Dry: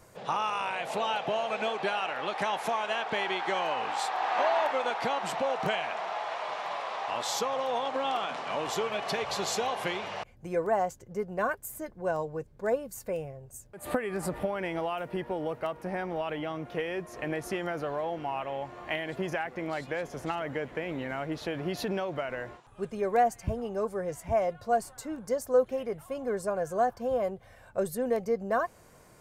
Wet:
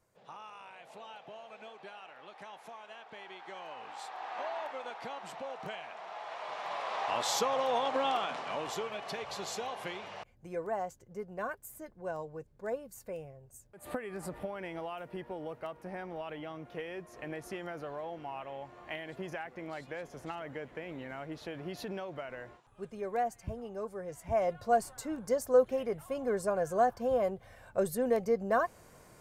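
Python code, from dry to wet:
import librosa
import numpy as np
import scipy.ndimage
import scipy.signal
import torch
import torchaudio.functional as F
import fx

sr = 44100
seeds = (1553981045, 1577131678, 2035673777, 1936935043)

y = fx.gain(x, sr, db=fx.line((3.11, -18.5), (4.19, -12.0), (5.94, -12.0), (7.0, 0.0), (8.02, 0.0), (9.01, -8.0), (24.08, -8.0), (24.52, -0.5)))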